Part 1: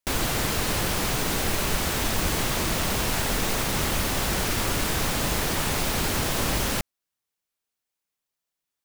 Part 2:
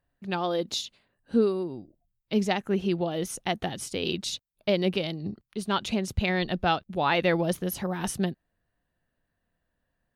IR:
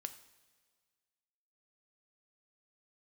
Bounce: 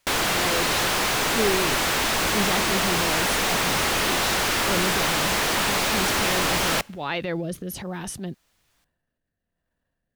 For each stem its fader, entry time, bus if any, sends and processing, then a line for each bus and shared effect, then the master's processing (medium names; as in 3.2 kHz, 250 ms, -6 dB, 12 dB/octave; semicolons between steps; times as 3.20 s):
-4.0 dB, 0.00 s, send -11 dB, overdrive pedal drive 31 dB, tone 4 kHz, clips at -12 dBFS
-0.5 dB, 0.00 s, no send, transient shaper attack -7 dB, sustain +6 dB; rotary cabinet horn 1.1 Hz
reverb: on, pre-delay 3 ms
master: none